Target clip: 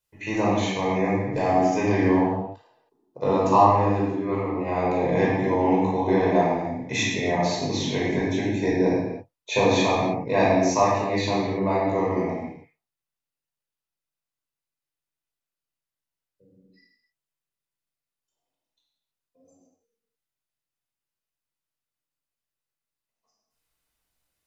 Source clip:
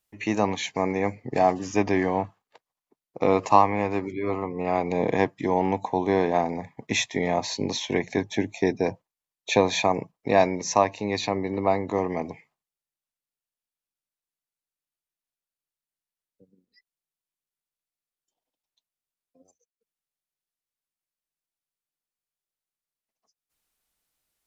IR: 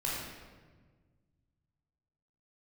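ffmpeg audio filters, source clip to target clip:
-filter_complex "[0:a]asettb=1/sr,asplit=3[a][b][c];[a]atrim=end=2.004[d];[b]atrim=start=2:end=4.27,asetpts=PTS-STARTPTS,afade=t=in:d=0.004:c=qsin,afade=t=out:st=2.266:d=0.004:c=qsin,equalizer=f=2.2k:w=6:g=-14.5[e];[c]atrim=start=4.266[f];[d][e]acrossfade=d=0.004:c1=hsin:c2=qsin[g];[g][f]acrossfade=d=0.004:c1=qsin:c2=hsin[h];[1:a]atrim=start_sample=2205,afade=t=out:st=0.38:d=0.01,atrim=end_sample=17199[i];[h][i]afir=irnorm=-1:irlink=0,volume=-3.5dB"

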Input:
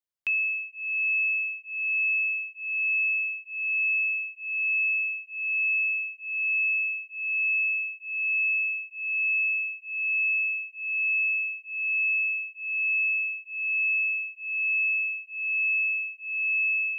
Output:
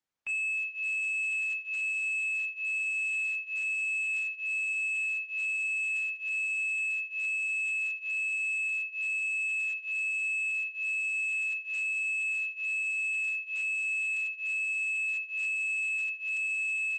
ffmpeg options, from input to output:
-filter_complex "[0:a]aemphasis=mode=production:type=cd,asoftclip=type=tanh:threshold=-30.5dB,lowpass=f=2.5k:w=0.5412,lowpass=f=2.5k:w=1.3066,bandreject=f=50:t=h:w=6,bandreject=f=100:t=h:w=6,bandreject=f=150:t=h:w=6,asplit=2[a][b];[b]aecho=0:1:20|44:0.398|0.188[c];[a][c]amix=inputs=2:normalize=0,asoftclip=type=hard:threshold=-33.5dB,asplit=2[d][e];[e]adelay=32,volume=-8dB[f];[d][f]amix=inputs=2:normalize=0,volume=3dB" -ar 48000 -c:a libopus -b:a 10k

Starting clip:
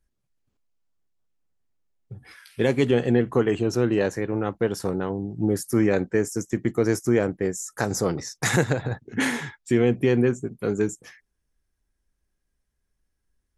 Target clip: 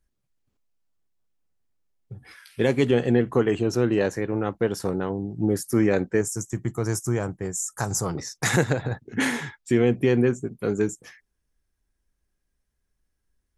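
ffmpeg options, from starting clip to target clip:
-filter_complex "[0:a]asettb=1/sr,asplit=3[a][b][c];[a]atrim=end=6.214[d];[b]atrim=start=6.21:end=8.15,asetpts=PTS-STARTPTS,afade=t=in:d=0.004:c=qsin,afade=t=out:st=1.936:d=0.004:c=qsin,equalizer=f=125:t=o:w=1:g=4,equalizer=f=250:t=o:w=1:g=-7,equalizer=f=500:t=o:w=1:g=-7,equalizer=f=1k:t=o:w=1:g=4,equalizer=f=2k:t=o:w=1:g=-7,equalizer=f=4k:t=o:w=1:g=-5,equalizer=f=8k:t=o:w=1:g=7[e];[c]atrim=start=8.146[f];[d][e]acrossfade=d=0.004:c1=hsin:c2=qsin[g];[g][f]acrossfade=d=0.004:c1=qsin:c2=hsin"

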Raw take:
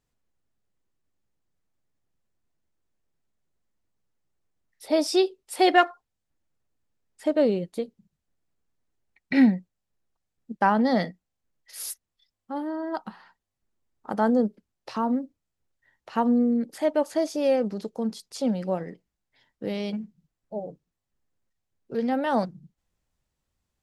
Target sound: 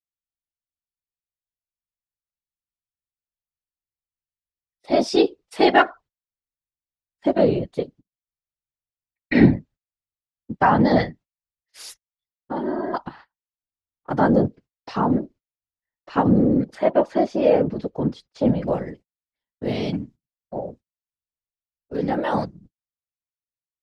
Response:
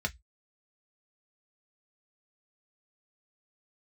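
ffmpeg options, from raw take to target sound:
-af "asetnsamples=n=441:p=0,asendcmd='16.75 lowpass f 2900;18.68 lowpass f 8300',lowpass=5.1k,agate=range=-31dB:threshold=-48dB:ratio=16:detection=peak,dynaudnorm=f=510:g=11:m=4dB,afftfilt=real='hypot(re,im)*cos(2*PI*random(0))':imag='hypot(re,im)*sin(2*PI*random(1))':win_size=512:overlap=0.75,volume=7dB"

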